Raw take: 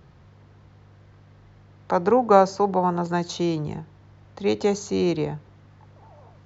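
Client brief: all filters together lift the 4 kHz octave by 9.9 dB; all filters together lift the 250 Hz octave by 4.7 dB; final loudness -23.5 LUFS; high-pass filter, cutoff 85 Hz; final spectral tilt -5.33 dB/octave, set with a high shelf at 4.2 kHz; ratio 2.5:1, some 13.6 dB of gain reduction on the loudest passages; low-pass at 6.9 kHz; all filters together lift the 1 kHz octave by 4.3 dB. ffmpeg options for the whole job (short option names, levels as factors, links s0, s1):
-af "highpass=85,lowpass=6900,equalizer=f=250:t=o:g=7,equalizer=f=1000:t=o:g=4.5,equalizer=f=4000:t=o:g=8.5,highshelf=f=4200:g=5.5,acompressor=threshold=0.0447:ratio=2.5,volume=1.68"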